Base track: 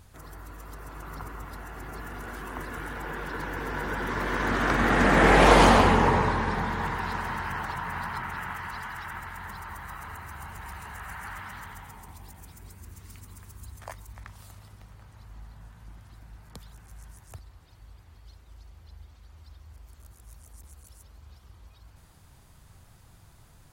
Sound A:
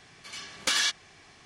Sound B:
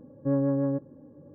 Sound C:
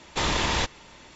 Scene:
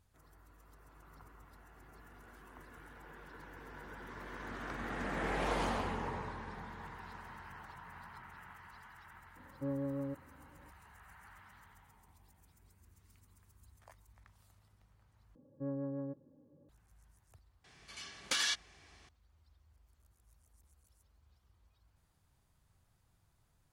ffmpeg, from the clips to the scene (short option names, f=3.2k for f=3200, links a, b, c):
-filter_complex "[2:a]asplit=2[a][b];[0:a]volume=-18.5dB,asplit=2[c][d];[c]atrim=end=15.354[e];[b]atrim=end=1.34,asetpts=PTS-STARTPTS,volume=-14dB[f];[d]atrim=start=16.686[g];[a]atrim=end=1.34,asetpts=PTS-STARTPTS,volume=-12.5dB,afade=t=in:d=0.004:c=hsin,afade=t=out:st=1.336:d=0.004:c=hsin,adelay=9360[h];[1:a]atrim=end=1.45,asetpts=PTS-STARTPTS,volume=-7.5dB,afade=t=in:d=0.004:c=hsin,afade=t=out:st=1.446:d=0.004:c=hsin,adelay=777924S[i];[e][f]acrossfade=d=0.004:c1=hsin:c2=hsin[j];[j][g]acrossfade=d=0.004:c1=hsin:c2=hsin[k];[k][h][i]amix=inputs=3:normalize=0"